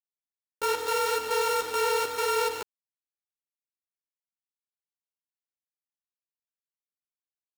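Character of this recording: a buzz of ramps at a fixed pitch in blocks of 32 samples; chopped level 2.3 Hz, depth 60%, duty 70%; a quantiser's noise floor 6-bit, dither none; a shimmering, thickened sound

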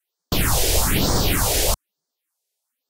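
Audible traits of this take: phasing stages 4, 1.1 Hz, lowest notch 190–2600 Hz; Vorbis

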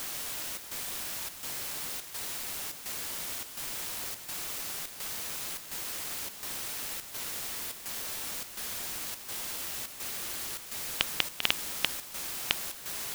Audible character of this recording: a quantiser's noise floor 6-bit, dither triangular; chopped level 1.4 Hz, depth 60%, duty 80%

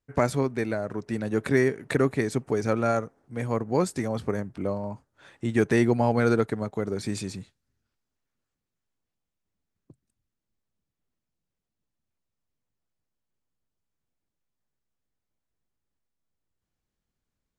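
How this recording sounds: noise floor -85 dBFS; spectral tilt -5.0 dB/octave

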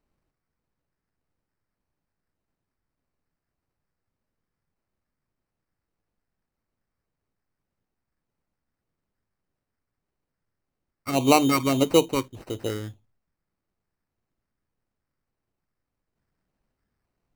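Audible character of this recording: phasing stages 8, 1.7 Hz, lowest notch 680–2500 Hz; aliases and images of a low sample rate 3.4 kHz, jitter 0%

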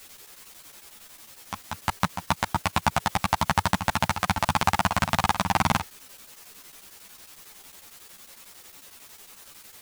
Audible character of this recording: a quantiser's noise floor 8-bit, dither triangular; chopped level 11 Hz, depth 65%, duty 75%; a shimmering, thickened sound

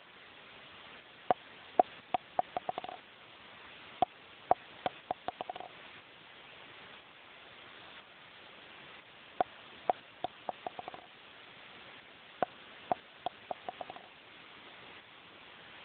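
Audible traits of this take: a quantiser's noise floor 8-bit, dither triangular; tremolo saw up 1 Hz, depth 45%; AMR-NB

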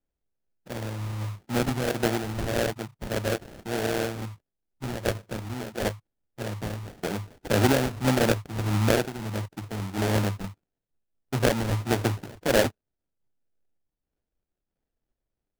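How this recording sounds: phasing stages 2, 1.6 Hz, lowest notch 470–2600 Hz; aliases and images of a low sample rate 1.1 kHz, jitter 20%; random flutter of the level

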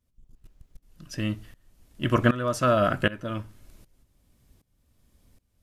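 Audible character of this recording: tremolo saw up 1.3 Hz, depth 90%

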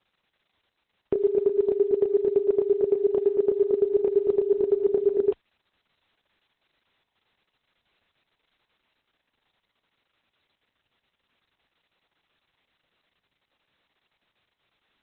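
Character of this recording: chopped level 8.9 Hz, depth 65%, duty 30%; a quantiser's noise floor 12-bit, dither triangular; Opus

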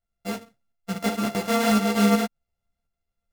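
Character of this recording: a buzz of ramps at a fixed pitch in blocks of 64 samples; tremolo saw up 1.4 Hz, depth 50%; a shimmering, thickened sound

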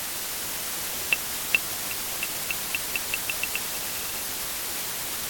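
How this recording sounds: tremolo saw up 0.56 Hz, depth 90%; a quantiser's noise floor 6-bit, dither triangular; AAC

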